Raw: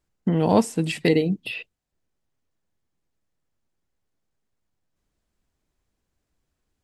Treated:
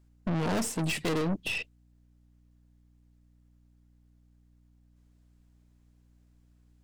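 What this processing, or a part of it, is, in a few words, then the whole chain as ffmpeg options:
valve amplifier with mains hum: -af "aeval=exprs='(tanh(35.5*val(0)+0.5)-tanh(0.5))/35.5':c=same,aeval=exprs='val(0)+0.000562*(sin(2*PI*60*n/s)+sin(2*PI*2*60*n/s)/2+sin(2*PI*3*60*n/s)/3+sin(2*PI*4*60*n/s)/4+sin(2*PI*5*60*n/s)/5)':c=same,volume=4dB"

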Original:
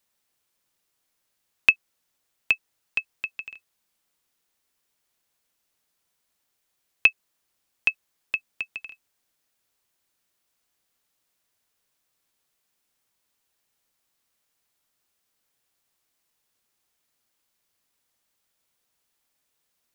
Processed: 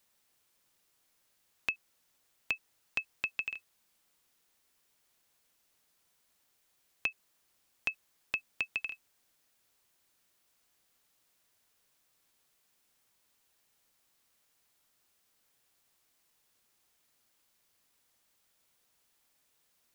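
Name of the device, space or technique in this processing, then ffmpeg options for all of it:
de-esser from a sidechain: -filter_complex "[0:a]asplit=2[a][b];[b]highpass=4.7k,apad=whole_len=879713[c];[a][c]sidechaincompress=threshold=-37dB:ratio=10:attack=0.79:release=53,volume=2.5dB"

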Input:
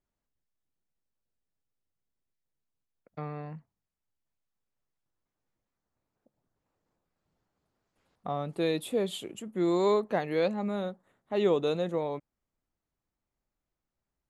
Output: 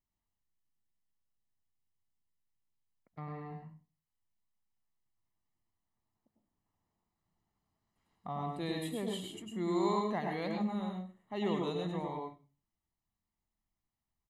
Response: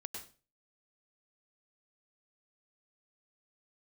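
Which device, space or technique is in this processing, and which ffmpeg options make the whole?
microphone above a desk: -filter_complex "[0:a]aecho=1:1:1:0.58[a];[1:a]atrim=start_sample=2205[b];[a][b]afir=irnorm=-1:irlink=0,volume=-3dB"

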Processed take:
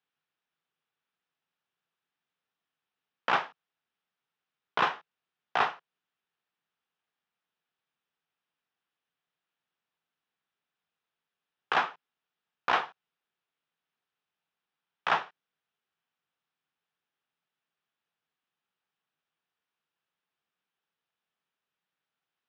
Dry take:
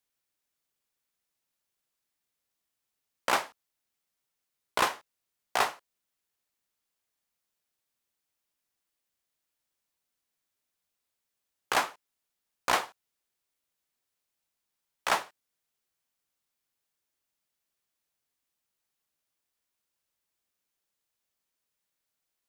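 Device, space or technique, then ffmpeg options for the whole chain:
overdrive pedal into a guitar cabinet: -filter_complex "[0:a]asplit=2[a][b];[b]highpass=f=720:p=1,volume=10dB,asoftclip=type=tanh:threshold=-10.5dB[c];[a][c]amix=inputs=2:normalize=0,lowpass=f=2.1k:p=1,volume=-6dB,highpass=94,equalizer=f=160:t=q:w=4:g=8,equalizer=f=320:t=q:w=4:g=-3,equalizer=f=580:t=q:w=4:g=-7,equalizer=f=1k:t=q:w=4:g=-3,equalizer=f=2.1k:t=q:w=4:g=-5,equalizer=f=4.4k:t=q:w=4:g=-7,lowpass=f=4.6k:w=0.5412,lowpass=f=4.6k:w=1.3066,volume=1dB"

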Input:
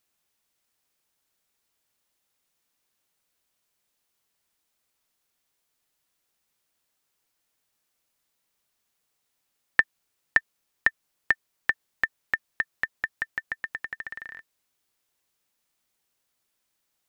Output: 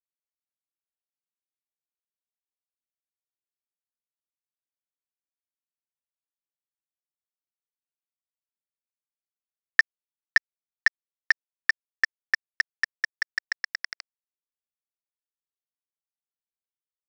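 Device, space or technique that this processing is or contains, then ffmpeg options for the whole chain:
hand-held game console: -af "acrusher=bits=3:mix=0:aa=0.000001,highpass=460,equalizer=f=630:t=q:w=4:g=-8,equalizer=f=920:t=q:w=4:g=-9,equalizer=f=2k:t=q:w=4:g=4,equalizer=f=3k:t=q:w=4:g=-4,equalizer=f=4.7k:t=q:w=4:g=9,lowpass=f=5.9k:w=0.5412,lowpass=f=5.9k:w=1.3066"

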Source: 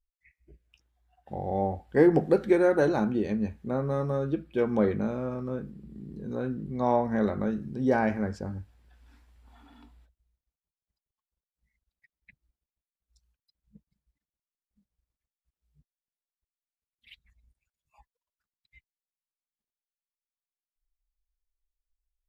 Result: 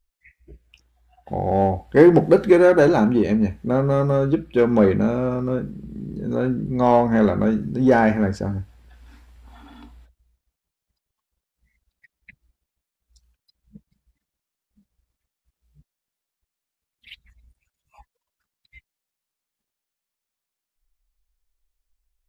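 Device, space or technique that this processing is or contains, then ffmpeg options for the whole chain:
parallel distortion: -filter_complex "[0:a]asplit=2[a][b];[b]asoftclip=type=hard:threshold=-25dB,volume=-8dB[c];[a][c]amix=inputs=2:normalize=0,volume=7dB"

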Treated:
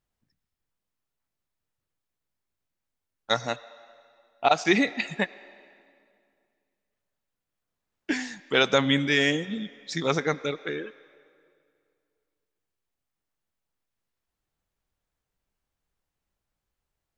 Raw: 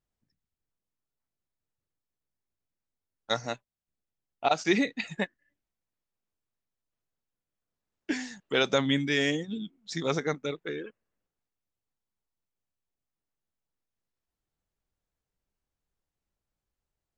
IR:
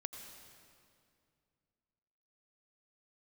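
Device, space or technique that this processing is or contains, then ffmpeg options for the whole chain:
filtered reverb send: -filter_complex "[0:a]asplit=2[a][b];[b]highpass=570,lowpass=4.3k[c];[1:a]atrim=start_sample=2205[d];[c][d]afir=irnorm=-1:irlink=0,volume=-6.5dB[e];[a][e]amix=inputs=2:normalize=0,volume=3dB"

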